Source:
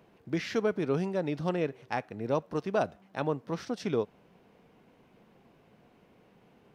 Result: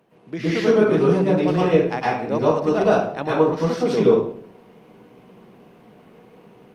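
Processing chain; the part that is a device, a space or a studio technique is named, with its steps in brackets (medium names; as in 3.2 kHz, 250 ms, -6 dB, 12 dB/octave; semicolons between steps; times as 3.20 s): far-field microphone of a smart speaker (reverberation RT60 0.60 s, pre-delay 104 ms, DRR -7.5 dB; high-pass 140 Hz 12 dB/octave; level rider gain up to 5 dB; Opus 32 kbps 48 kHz)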